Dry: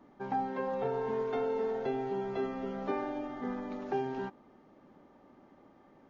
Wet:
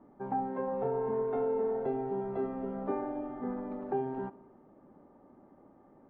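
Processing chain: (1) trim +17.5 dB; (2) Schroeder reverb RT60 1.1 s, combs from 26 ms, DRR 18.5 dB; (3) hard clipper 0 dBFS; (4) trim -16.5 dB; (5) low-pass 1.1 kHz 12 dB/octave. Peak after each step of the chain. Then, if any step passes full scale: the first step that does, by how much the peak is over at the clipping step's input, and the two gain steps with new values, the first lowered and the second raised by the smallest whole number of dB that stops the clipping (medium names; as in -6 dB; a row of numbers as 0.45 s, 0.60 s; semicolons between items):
-4.5 dBFS, -4.5 dBFS, -4.5 dBFS, -21.0 dBFS, -22.0 dBFS; nothing clips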